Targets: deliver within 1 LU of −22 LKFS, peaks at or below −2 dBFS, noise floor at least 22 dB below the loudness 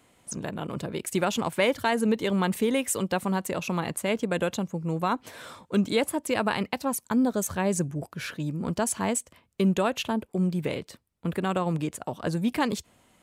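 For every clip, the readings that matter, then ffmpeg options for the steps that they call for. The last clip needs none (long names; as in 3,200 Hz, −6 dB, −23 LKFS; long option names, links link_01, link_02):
integrated loudness −28.0 LKFS; sample peak −12.0 dBFS; target loudness −22.0 LKFS
→ -af "volume=6dB"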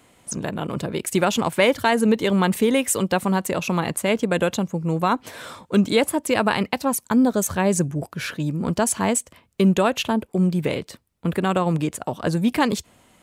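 integrated loudness −22.0 LKFS; sample peak −6.0 dBFS; background noise floor −62 dBFS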